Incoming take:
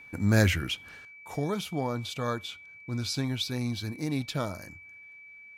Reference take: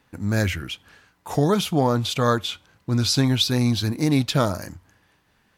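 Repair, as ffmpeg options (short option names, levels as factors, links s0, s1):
-af "bandreject=f=2300:w=30,asetnsamples=n=441:p=0,asendcmd='1.05 volume volume 11dB',volume=1"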